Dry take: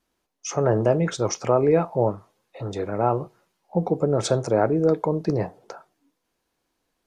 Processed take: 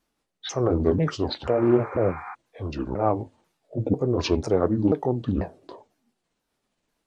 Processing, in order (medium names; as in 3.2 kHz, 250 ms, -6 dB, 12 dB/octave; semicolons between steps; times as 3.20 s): sawtooth pitch modulation -9 st, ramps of 492 ms; spectral replace 1.52–2.32 s, 730–2500 Hz before; loudspeaker Doppler distortion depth 0.17 ms